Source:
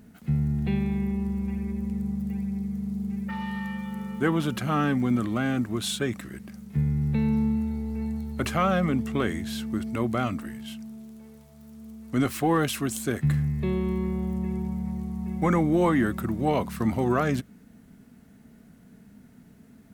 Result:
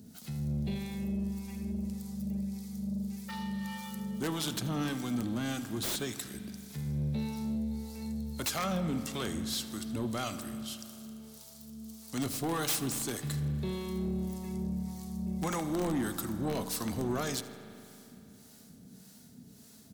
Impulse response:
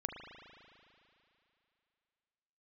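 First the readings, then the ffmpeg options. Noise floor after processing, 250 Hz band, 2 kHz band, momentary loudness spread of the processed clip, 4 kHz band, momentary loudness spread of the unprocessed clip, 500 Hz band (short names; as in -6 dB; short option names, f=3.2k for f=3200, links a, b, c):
-55 dBFS, -8.0 dB, -9.0 dB, 18 LU, -0.5 dB, 9 LU, -9.5 dB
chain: -filter_complex "[0:a]highpass=67,highshelf=f=3.1k:t=q:w=1.5:g=12.5,asplit=2[a][b];[b]acompressor=threshold=-35dB:ratio=8,volume=-2.5dB[c];[a][c]amix=inputs=2:normalize=0,aeval=exprs='(mod(4.22*val(0)+1,2)-1)/4.22':c=same,acrossover=split=540[d][e];[d]aeval=exprs='val(0)*(1-0.7/2+0.7/2*cos(2*PI*1.7*n/s))':c=same[f];[e]aeval=exprs='val(0)*(1-0.7/2-0.7/2*cos(2*PI*1.7*n/s))':c=same[g];[f][g]amix=inputs=2:normalize=0,asoftclip=type=tanh:threshold=-22dB,aecho=1:1:81|162|243|324:0.106|0.053|0.0265|0.0132,asplit=2[h][i];[1:a]atrim=start_sample=2205[j];[i][j]afir=irnorm=-1:irlink=0,volume=-3dB[k];[h][k]amix=inputs=2:normalize=0,volume=-8.5dB"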